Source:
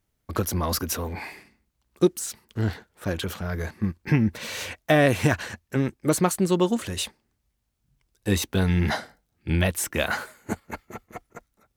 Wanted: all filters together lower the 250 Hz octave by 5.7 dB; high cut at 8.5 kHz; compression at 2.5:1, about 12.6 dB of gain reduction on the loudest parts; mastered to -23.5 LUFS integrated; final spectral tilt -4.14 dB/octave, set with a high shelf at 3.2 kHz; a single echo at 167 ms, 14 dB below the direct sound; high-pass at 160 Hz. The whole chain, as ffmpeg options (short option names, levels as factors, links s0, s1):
-af "highpass=160,lowpass=8500,equalizer=f=250:t=o:g=-7,highshelf=f=3200:g=-3.5,acompressor=threshold=0.0158:ratio=2.5,aecho=1:1:167:0.2,volume=5.62"